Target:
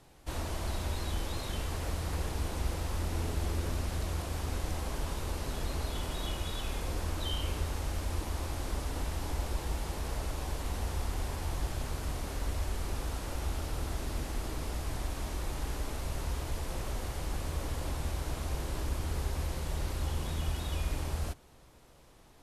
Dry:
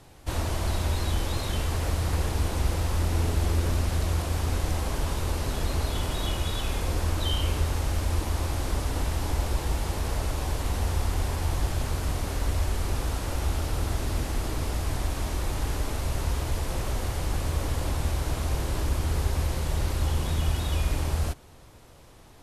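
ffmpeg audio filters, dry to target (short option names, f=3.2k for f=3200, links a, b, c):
-af "equalizer=f=97:w=7.3:g=-14.5,volume=-6.5dB"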